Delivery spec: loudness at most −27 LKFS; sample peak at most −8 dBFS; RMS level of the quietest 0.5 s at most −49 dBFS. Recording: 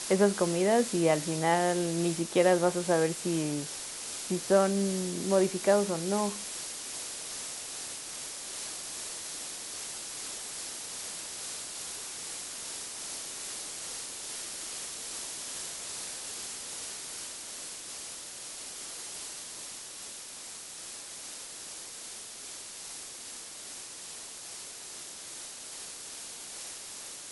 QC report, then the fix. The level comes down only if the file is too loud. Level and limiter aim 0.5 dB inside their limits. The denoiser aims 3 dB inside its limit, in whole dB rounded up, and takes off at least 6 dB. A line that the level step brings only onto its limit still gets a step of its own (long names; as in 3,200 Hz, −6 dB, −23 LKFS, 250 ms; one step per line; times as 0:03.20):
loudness −33.0 LKFS: in spec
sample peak −10.5 dBFS: in spec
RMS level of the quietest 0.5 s −44 dBFS: out of spec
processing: broadband denoise 8 dB, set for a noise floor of −44 dBFS